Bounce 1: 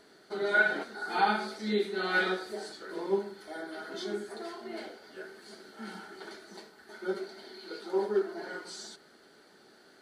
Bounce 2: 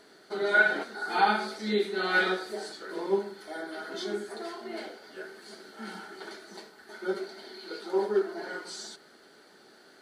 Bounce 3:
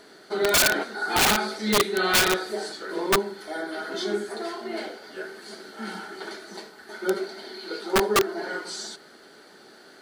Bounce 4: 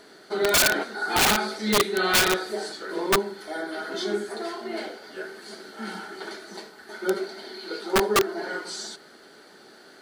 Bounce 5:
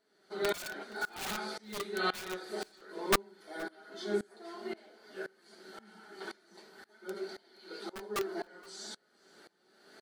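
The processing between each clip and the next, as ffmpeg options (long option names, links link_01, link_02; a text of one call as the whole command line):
ffmpeg -i in.wav -af "lowshelf=frequency=170:gain=-5.5,volume=3dB" out.wav
ffmpeg -i in.wav -af "aeval=exprs='(mod(9.44*val(0)+1,2)-1)/9.44':channel_layout=same,volume=6dB" out.wav
ffmpeg -i in.wav -af anull out.wav
ffmpeg -i in.wav -af "flanger=delay=4.5:depth=1.4:regen=67:speed=1:shape=triangular,aecho=1:1:472:0.075,aeval=exprs='val(0)*pow(10,-24*if(lt(mod(-1.9*n/s,1),2*abs(-1.9)/1000),1-mod(-1.9*n/s,1)/(2*abs(-1.9)/1000),(mod(-1.9*n/s,1)-2*abs(-1.9)/1000)/(1-2*abs(-1.9)/1000))/20)':channel_layout=same" out.wav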